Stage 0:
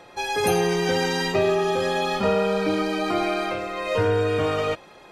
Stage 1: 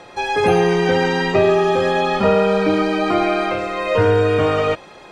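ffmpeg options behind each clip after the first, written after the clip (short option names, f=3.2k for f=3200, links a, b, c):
-filter_complex "[0:a]acrossover=split=3100[a][b];[b]acompressor=threshold=-45dB:ratio=4:attack=1:release=60[c];[a][c]amix=inputs=2:normalize=0,lowpass=f=10k:w=0.5412,lowpass=f=10k:w=1.3066,volume=6.5dB"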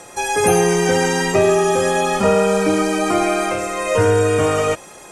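-af "aexciter=amount=10.9:drive=5:freq=6.1k"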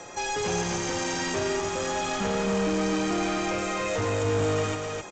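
-filter_complex "[0:a]acrossover=split=280|3000[a][b][c];[b]acompressor=threshold=-25dB:ratio=2[d];[a][d][c]amix=inputs=3:normalize=0,aresample=16000,asoftclip=type=tanh:threshold=-23.5dB,aresample=44100,aecho=1:1:261:0.631,volume=-2dB"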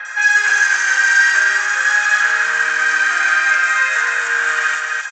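-filter_complex "[0:a]highpass=f=1.6k:t=q:w=13,acontrast=81,acrossover=split=3500[a][b];[b]adelay=50[c];[a][c]amix=inputs=2:normalize=0,volume=2dB"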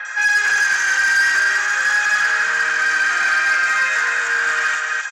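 -af "asoftclip=type=tanh:threshold=-11dB"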